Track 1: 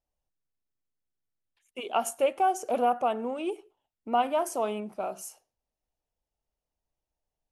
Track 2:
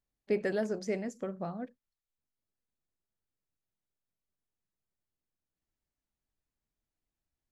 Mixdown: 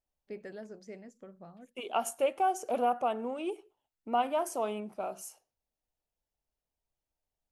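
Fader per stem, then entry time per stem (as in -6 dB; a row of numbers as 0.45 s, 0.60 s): -3.5 dB, -13.0 dB; 0.00 s, 0.00 s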